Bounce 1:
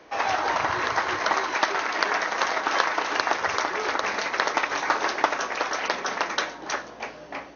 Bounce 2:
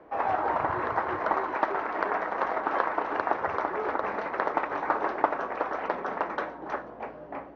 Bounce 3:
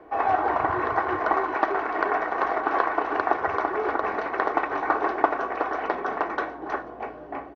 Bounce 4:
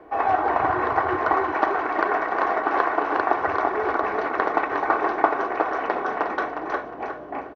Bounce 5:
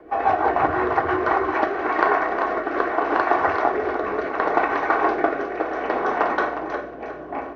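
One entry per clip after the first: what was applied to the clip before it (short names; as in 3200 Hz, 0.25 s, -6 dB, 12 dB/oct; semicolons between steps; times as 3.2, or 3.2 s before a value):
LPF 1100 Hz 12 dB/oct
comb 2.7 ms, depth 43%; gain +3 dB
feedback echo 0.359 s, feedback 26%, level -7 dB; gain +1.5 dB
reverb RT60 0.55 s, pre-delay 5 ms, DRR 5.5 dB; rotary speaker horn 6 Hz, later 0.7 Hz, at 1.08; gain +3.5 dB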